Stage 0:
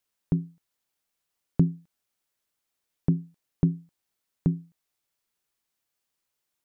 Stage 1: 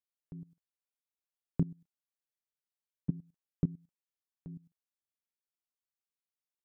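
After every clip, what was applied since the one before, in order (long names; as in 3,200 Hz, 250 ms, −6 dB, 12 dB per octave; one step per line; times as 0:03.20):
output level in coarse steps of 19 dB
level −6 dB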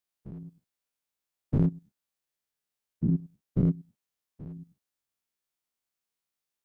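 every bin's largest magnitude spread in time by 120 ms
level +1.5 dB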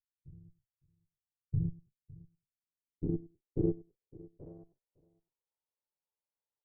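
lower of the sound and its delayed copy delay 2.1 ms
low-pass filter sweep 120 Hz → 790 Hz, 0:01.38–0:05.10
single-tap delay 558 ms −21 dB
level −7 dB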